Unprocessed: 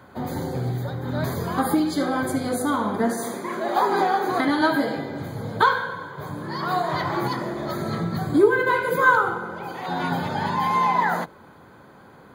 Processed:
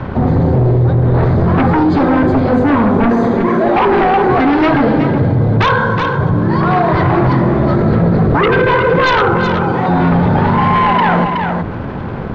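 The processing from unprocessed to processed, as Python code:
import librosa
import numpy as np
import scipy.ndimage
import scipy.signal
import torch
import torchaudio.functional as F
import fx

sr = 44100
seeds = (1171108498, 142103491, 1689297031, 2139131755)

p1 = fx.riaa(x, sr, side='playback')
p2 = fx.fold_sine(p1, sr, drive_db=15, ceiling_db=-1.5)
p3 = p1 + (p2 * librosa.db_to_amplitude(-3.0))
p4 = fx.hum_notches(p3, sr, base_hz=50, count=6)
p5 = np.sign(p4) * np.maximum(np.abs(p4) - 10.0 ** (-33.0 / 20.0), 0.0)
p6 = fx.air_absorb(p5, sr, metres=190.0)
p7 = p6 + fx.echo_single(p6, sr, ms=370, db=-10.0, dry=0)
p8 = fx.env_flatten(p7, sr, amount_pct=50)
y = p8 * librosa.db_to_amplitude(-5.5)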